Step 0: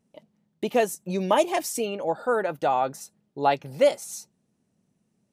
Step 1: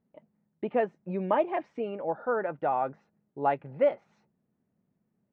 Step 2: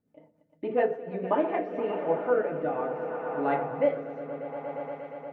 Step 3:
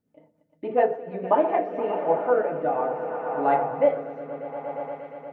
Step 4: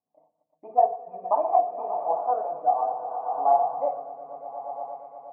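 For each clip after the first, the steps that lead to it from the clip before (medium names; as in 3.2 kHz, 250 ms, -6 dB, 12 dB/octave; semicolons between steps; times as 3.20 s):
low-pass 2.1 kHz 24 dB/octave; trim -4.5 dB
echo with a slow build-up 118 ms, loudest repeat 5, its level -15 dB; FDN reverb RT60 0.5 s, low-frequency decay 0.8×, high-frequency decay 0.55×, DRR -0.5 dB; rotary cabinet horn 7 Hz, later 0.65 Hz, at 1.00 s
dynamic bell 780 Hz, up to +8 dB, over -40 dBFS, Q 1.3
cascade formant filter a; trim +8 dB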